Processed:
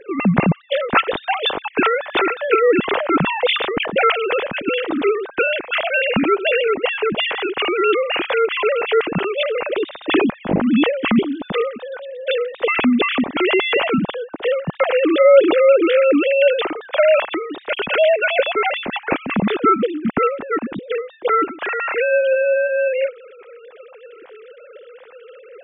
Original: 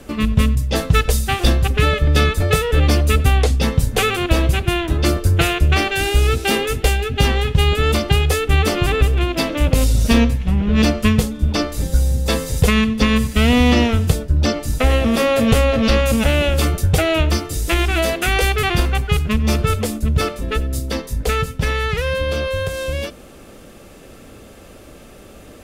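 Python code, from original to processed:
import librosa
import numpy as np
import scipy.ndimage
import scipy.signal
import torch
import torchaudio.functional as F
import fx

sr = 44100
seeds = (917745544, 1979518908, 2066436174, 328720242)

y = fx.sine_speech(x, sr)
y = fx.sustainer(y, sr, db_per_s=52.0, at=(2.81, 4.12))
y = F.gain(torch.from_numpy(y), -2.0).numpy()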